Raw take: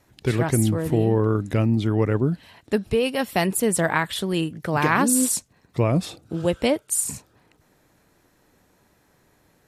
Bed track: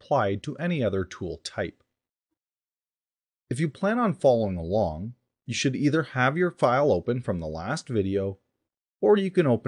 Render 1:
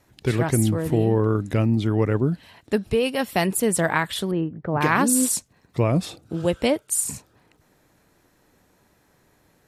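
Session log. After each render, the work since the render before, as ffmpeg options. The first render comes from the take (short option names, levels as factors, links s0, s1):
-filter_complex "[0:a]asettb=1/sr,asplit=3[s0][s1][s2];[s0]atrim=end=4.314[s3];[s1]atrim=start=4.31:end=4.81,asetpts=PTS-STARTPTS,afade=t=in:d=0.004:c=qsin,afade=t=out:st=0.496:d=0.004:c=qsin,lowpass=1100[s4];[s2]atrim=start=4.806[s5];[s3][s4]acrossfade=d=0.004:c1=hsin:c2=qsin[s6];[s6][s5]acrossfade=d=0.004:c1=qsin:c2=hsin"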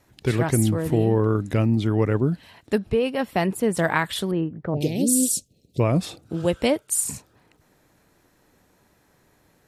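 -filter_complex "[0:a]asettb=1/sr,asplit=3[s0][s1][s2];[s0]atrim=end=2.784[s3];[s1]atrim=start=2.78:end=3.77,asetpts=PTS-STARTPTS,afade=t=in:d=0.004:c=qsin,afade=t=out:st=0.986:d=0.004:c=qsin,highshelf=f=3400:g=-11.5[s4];[s2]atrim=start=3.766[s5];[s3][s4]acrossfade=d=0.004:c1=hsin:c2=qsin[s6];[s6][s5]acrossfade=d=0.004:c1=qsin:c2=hsin,asettb=1/sr,asplit=3[s7][s8][s9];[s7]atrim=end=4.744[s10];[s8]atrim=start=4.74:end=5.8,asetpts=PTS-STARTPTS,afade=t=in:d=0.004:c=qsin,afade=t=out:st=1.056:d=0.004:c=qsin,asuperstop=centerf=1300:order=8:qfactor=0.55[s11];[s9]atrim=start=5.796[s12];[s10][s11]acrossfade=d=0.004:c1=hsin:c2=qsin[s13];[s13][s12]acrossfade=d=0.004:c1=qsin:c2=hsin"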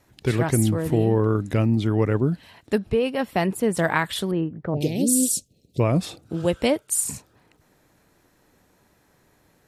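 -af anull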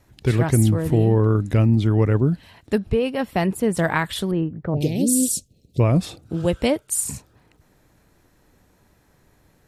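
-af "lowshelf=f=110:g=10.5"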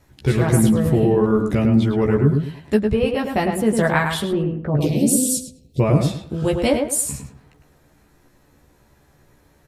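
-filter_complex "[0:a]asplit=2[s0][s1];[s1]adelay=14,volume=0.708[s2];[s0][s2]amix=inputs=2:normalize=0,asplit=2[s3][s4];[s4]adelay=105,lowpass=f=2100:p=1,volume=0.631,asplit=2[s5][s6];[s6]adelay=105,lowpass=f=2100:p=1,volume=0.29,asplit=2[s7][s8];[s8]adelay=105,lowpass=f=2100:p=1,volume=0.29,asplit=2[s9][s10];[s10]adelay=105,lowpass=f=2100:p=1,volume=0.29[s11];[s5][s7][s9][s11]amix=inputs=4:normalize=0[s12];[s3][s12]amix=inputs=2:normalize=0"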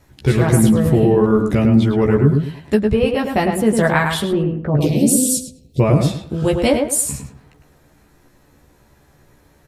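-af "volume=1.41,alimiter=limit=0.708:level=0:latency=1"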